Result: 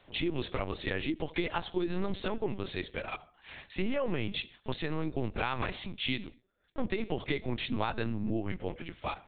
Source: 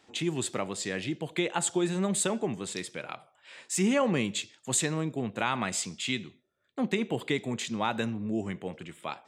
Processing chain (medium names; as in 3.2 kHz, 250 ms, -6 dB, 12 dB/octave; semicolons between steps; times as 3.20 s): compression 12:1, threshold -28 dBFS, peak gain reduction 8 dB; LPC vocoder at 8 kHz pitch kept; trim +1.5 dB